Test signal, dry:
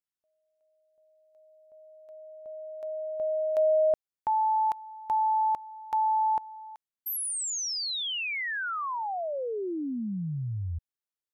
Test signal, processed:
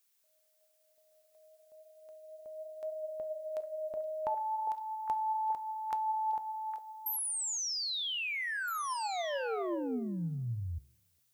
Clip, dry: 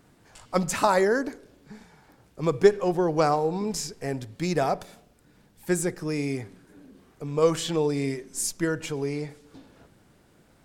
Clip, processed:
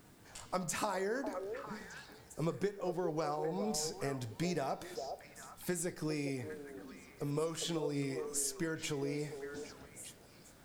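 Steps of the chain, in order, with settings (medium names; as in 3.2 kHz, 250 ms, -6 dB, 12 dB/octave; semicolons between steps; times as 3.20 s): peaking EQ 11 kHz +3.5 dB 2.2 oct; compression 6:1, threshold -32 dBFS; flange 0.34 Hz, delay 9.1 ms, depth 8.7 ms, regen +81%; repeats whose band climbs or falls 404 ms, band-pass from 560 Hz, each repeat 1.4 oct, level -4 dB; added noise blue -76 dBFS; trim +2.5 dB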